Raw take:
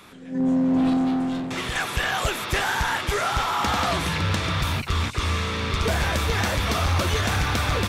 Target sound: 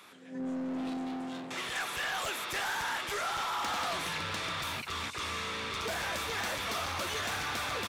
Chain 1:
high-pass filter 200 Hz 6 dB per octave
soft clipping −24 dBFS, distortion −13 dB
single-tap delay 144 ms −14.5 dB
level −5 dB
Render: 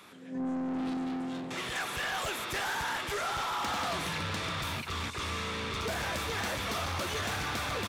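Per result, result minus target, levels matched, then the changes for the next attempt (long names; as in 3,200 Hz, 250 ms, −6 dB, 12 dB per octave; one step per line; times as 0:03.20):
echo-to-direct +7.5 dB; 250 Hz band +2.5 dB
change: single-tap delay 144 ms −22 dB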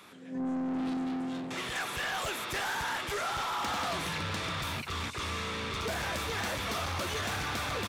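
250 Hz band +3.0 dB
change: high-pass filter 540 Hz 6 dB per octave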